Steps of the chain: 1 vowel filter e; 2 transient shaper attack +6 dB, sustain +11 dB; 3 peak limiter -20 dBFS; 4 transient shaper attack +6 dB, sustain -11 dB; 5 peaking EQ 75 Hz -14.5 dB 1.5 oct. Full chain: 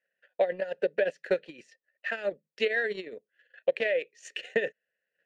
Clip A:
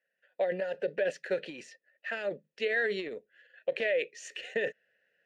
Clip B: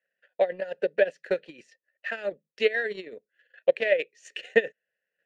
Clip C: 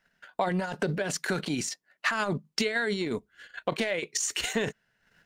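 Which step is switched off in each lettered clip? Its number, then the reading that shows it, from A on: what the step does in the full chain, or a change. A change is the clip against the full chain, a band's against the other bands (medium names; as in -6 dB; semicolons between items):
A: 4, crest factor change -3.0 dB; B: 3, crest factor change +4.5 dB; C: 1, 500 Hz band -12.0 dB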